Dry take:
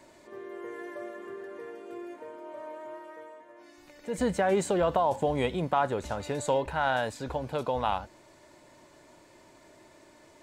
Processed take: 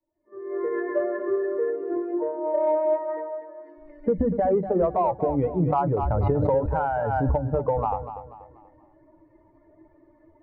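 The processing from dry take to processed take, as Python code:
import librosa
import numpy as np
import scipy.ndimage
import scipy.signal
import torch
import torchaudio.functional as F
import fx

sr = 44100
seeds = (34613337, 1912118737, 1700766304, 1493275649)

p1 = fx.bin_expand(x, sr, power=2.0)
p2 = fx.recorder_agc(p1, sr, target_db=-20.5, rise_db_per_s=53.0, max_gain_db=30)
p3 = scipy.signal.sosfilt(scipy.signal.butter(4, 1100.0, 'lowpass', fs=sr, output='sos'), p2)
p4 = fx.hum_notches(p3, sr, base_hz=50, count=7)
p5 = 10.0 ** (-25.0 / 20.0) * np.tanh(p4 / 10.0 ** (-25.0 / 20.0))
p6 = p4 + F.gain(torch.from_numpy(p5), -10.5).numpy()
p7 = fx.echo_feedback(p6, sr, ms=242, feedback_pct=37, wet_db=-11.0)
p8 = fx.pre_swell(p7, sr, db_per_s=21.0, at=(5.6, 7.3))
y = F.gain(torch.from_numpy(p8), 4.0).numpy()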